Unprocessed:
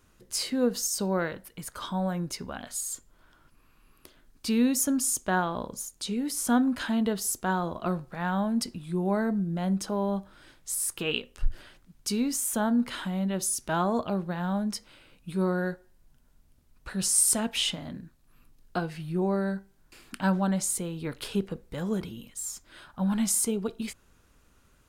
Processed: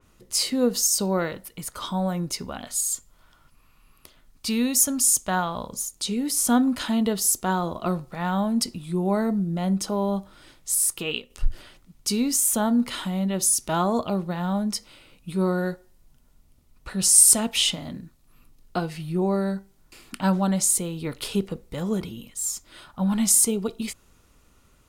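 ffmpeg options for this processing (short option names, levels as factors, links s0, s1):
-filter_complex "[0:a]asettb=1/sr,asplit=3[s0][s1][s2];[s0]atrim=end=2.934[s3];[s1]atrim=start=2.93:end=5.72,asetpts=PTS-STARTPTS,afade=t=in:d=0.004:c=qsin,afade=t=out:st=2.786:d=0.004:c=qsin,equalizer=f=340:t=o:w=1.1:g=-7[s4];[s2]atrim=start=5.716[s5];[s3][s4]acrossfade=d=0.004:c1=hsin:c2=qsin[s6];[s6][s5]acrossfade=d=0.004:c1=qsin:c2=hsin,asplit=2[s7][s8];[s7]atrim=end=11.3,asetpts=PTS-STARTPTS,afade=t=out:st=10.76:d=0.54:silence=0.446684[s9];[s8]atrim=start=11.3,asetpts=PTS-STARTPTS,afade=t=in:d=0.004:c=hsin:silence=0.446684[s10];[s9][s10]concat=n=2:v=0:a=1,bandreject=f=1600:w=7.7,adynamicequalizer=threshold=0.00708:dfrequency=3500:dqfactor=0.7:tfrequency=3500:tqfactor=0.7:attack=5:release=100:ratio=0.375:range=2.5:mode=boostabove:tftype=highshelf,volume=1.5"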